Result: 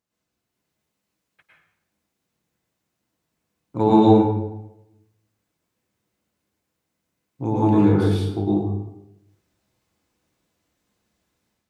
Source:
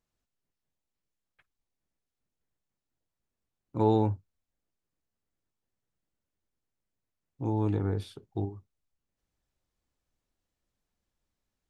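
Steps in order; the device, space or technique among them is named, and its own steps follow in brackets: far laptop microphone (reverberation RT60 0.85 s, pre-delay 98 ms, DRR -6.5 dB; high-pass 100 Hz 12 dB/octave; level rider gain up to 7 dB)

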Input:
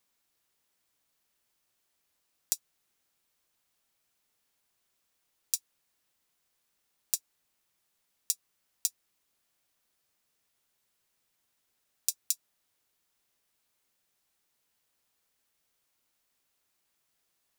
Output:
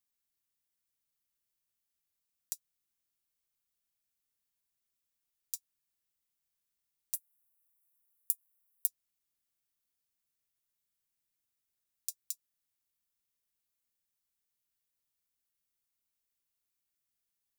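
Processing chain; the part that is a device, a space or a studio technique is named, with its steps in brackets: 7.14–8.87 s: FFT filter 150 Hz 0 dB, 410 Hz -19 dB, 840 Hz +3 dB, 5.5 kHz -9 dB, 11 kHz +10 dB; smiley-face EQ (bass shelf 130 Hz +7.5 dB; peaking EQ 660 Hz -5.5 dB 1.6 oct; treble shelf 8.2 kHz +8.5 dB); trim -14 dB

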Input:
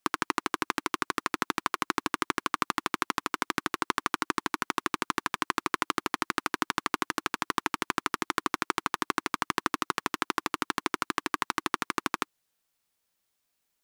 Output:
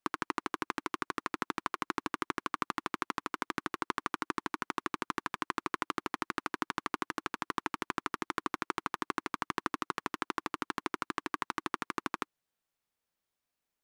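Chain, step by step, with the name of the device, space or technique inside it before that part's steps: behind a face mask (treble shelf 3 kHz -7.5 dB); trim -4.5 dB

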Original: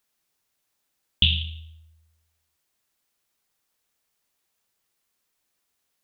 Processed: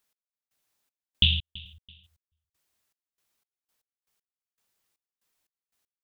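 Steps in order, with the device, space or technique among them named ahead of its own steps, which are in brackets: trance gate with a delay (trance gate "x...xxx..xx..x.." 118 bpm -60 dB; feedback delay 332 ms, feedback 32%, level -21.5 dB); trim -1.5 dB

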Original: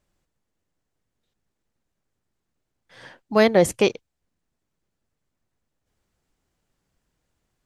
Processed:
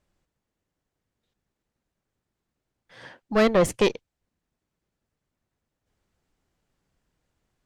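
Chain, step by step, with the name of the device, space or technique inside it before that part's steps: tube preamp driven hard (valve stage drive 15 dB, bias 0.55; treble shelf 6.3 kHz -5.5 dB); trim +2.5 dB

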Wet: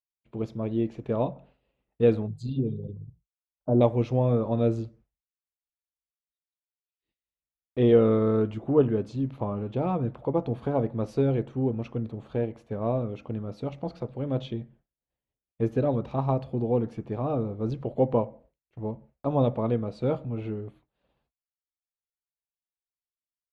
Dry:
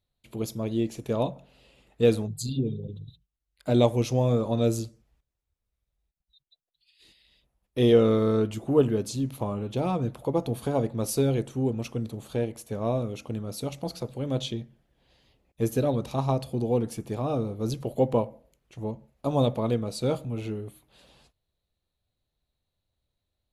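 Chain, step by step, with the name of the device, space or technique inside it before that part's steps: hearing-loss simulation (low-pass 2 kHz 12 dB/octave; expander -49 dBFS); 2.92–3.81 s: steep low-pass 1.1 kHz 36 dB/octave

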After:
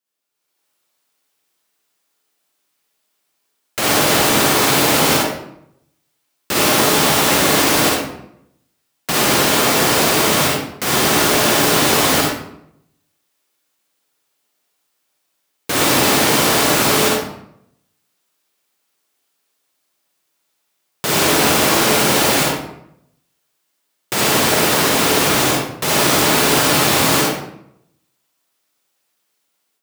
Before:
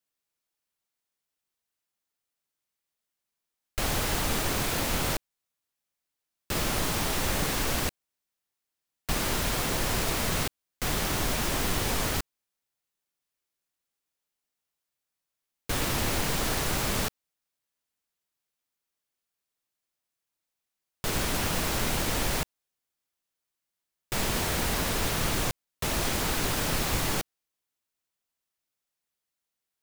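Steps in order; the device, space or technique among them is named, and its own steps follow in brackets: far laptop microphone (reverberation RT60 0.75 s, pre-delay 43 ms, DRR -3 dB; high-pass 190 Hz 12 dB/octave; level rider gain up to 11.5 dB); trim +1 dB

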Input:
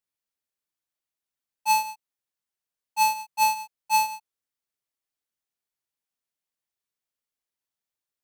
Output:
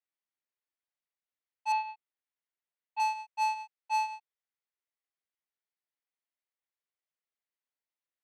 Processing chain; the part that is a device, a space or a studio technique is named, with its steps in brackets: intercom (band-pass 330–3500 Hz; peaking EQ 2 kHz +4.5 dB 0.29 oct; saturation -17 dBFS, distortion -17 dB); 1.72–3.00 s: steep low-pass 4.3 kHz 36 dB/octave; trim -5 dB

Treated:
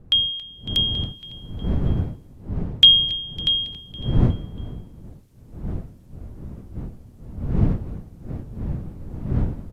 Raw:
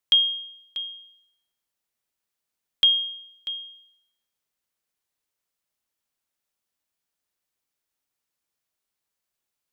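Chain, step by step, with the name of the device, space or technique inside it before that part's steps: 1.02–3.09 s: inverse Chebyshev high-pass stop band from 790 Hz, stop band 40 dB; bass shelf 150 Hz -11.5 dB; feedback delay 277 ms, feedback 54%, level -19 dB; smartphone video outdoors (wind noise 140 Hz -39 dBFS; level rider gain up to 15 dB; trim -1 dB; AAC 64 kbps 32 kHz)

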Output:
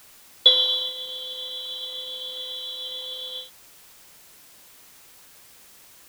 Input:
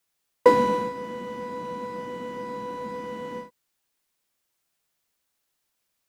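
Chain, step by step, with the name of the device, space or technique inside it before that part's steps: split-band scrambled radio (four frequency bands reordered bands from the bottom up 2413; band-pass 380–3200 Hz; white noise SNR 21 dB); trim +4 dB

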